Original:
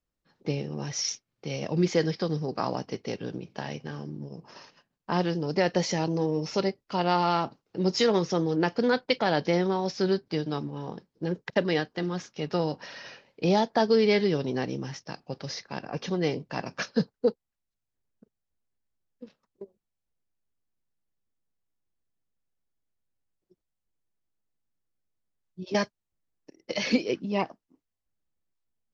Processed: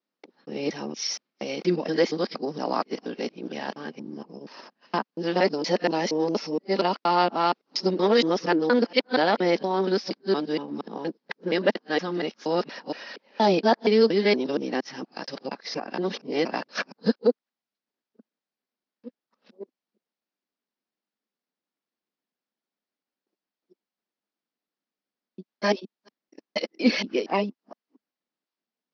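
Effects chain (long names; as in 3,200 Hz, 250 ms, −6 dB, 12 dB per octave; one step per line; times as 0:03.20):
reversed piece by piece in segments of 235 ms
elliptic band-pass filter 220–5,100 Hz, stop band 40 dB
level +4 dB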